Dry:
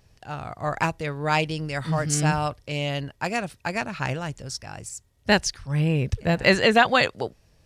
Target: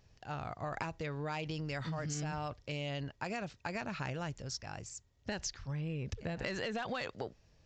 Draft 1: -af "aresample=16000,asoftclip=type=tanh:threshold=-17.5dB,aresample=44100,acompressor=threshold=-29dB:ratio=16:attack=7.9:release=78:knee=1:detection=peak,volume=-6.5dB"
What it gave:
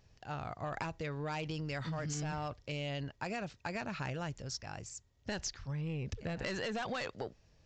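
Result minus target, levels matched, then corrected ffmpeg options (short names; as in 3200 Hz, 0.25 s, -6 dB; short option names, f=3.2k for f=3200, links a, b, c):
soft clip: distortion +7 dB
-af "aresample=16000,asoftclip=type=tanh:threshold=-10.5dB,aresample=44100,acompressor=threshold=-29dB:ratio=16:attack=7.9:release=78:knee=1:detection=peak,volume=-6.5dB"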